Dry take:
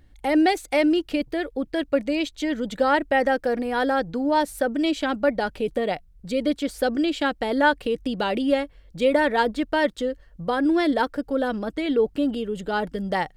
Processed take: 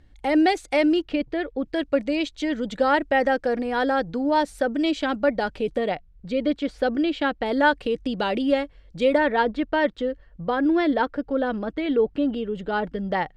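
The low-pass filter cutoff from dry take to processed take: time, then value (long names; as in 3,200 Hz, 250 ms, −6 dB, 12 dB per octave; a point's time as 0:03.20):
7,300 Hz
from 0:01.02 3,600 Hz
from 0:01.66 6,700 Hz
from 0:05.89 3,600 Hz
from 0:07.46 6,500 Hz
from 0:09.18 3,300 Hz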